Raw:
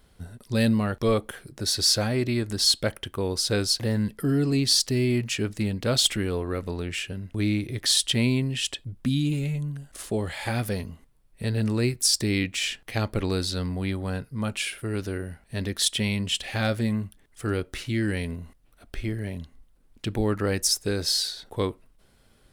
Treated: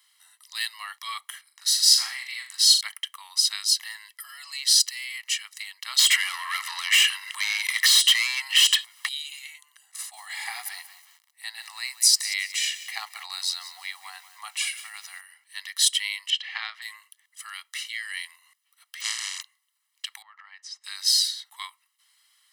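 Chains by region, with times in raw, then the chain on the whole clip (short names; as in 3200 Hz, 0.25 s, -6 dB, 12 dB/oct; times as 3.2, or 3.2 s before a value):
1.41–2.81 resonant low shelf 210 Hz +8.5 dB, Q 3 + flutter echo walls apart 7 m, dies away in 0.41 s + mismatched tape noise reduction decoder only
5.99–9.09 compressor, threshold -34 dBFS + overdrive pedal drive 34 dB, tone 5800 Hz, clips at -11.5 dBFS
9.82–15.21 bell 740 Hz +14 dB 0.37 oct + notch 3100 Hz, Q 10 + lo-fi delay 0.183 s, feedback 35%, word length 7-bit, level -13.5 dB
16.3–16.82 transient shaper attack +8 dB, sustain +2 dB + air absorption 240 m
19–19.41 spectral contrast lowered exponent 0.12 + LPF 7800 Hz 24 dB/oct
20.22–20.84 tape spacing loss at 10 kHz 38 dB + compressor 10:1, threshold -29 dBFS
whole clip: Bessel high-pass 1900 Hz, order 8; comb 1 ms, depth 84%; gain +2.5 dB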